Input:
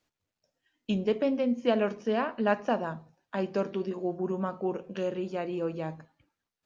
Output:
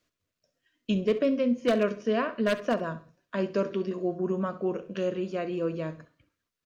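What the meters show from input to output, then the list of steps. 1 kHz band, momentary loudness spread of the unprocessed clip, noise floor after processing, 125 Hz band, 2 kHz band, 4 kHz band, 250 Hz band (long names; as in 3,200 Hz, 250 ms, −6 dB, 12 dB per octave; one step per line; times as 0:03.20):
−2.0 dB, 10 LU, below −85 dBFS, +2.0 dB, +1.5 dB, +2.5 dB, +2.0 dB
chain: wave folding −17.5 dBFS
Butterworth band-reject 830 Hz, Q 3.6
repeating echo 66 ms, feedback 27%, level −15.5 dB
level +2 dB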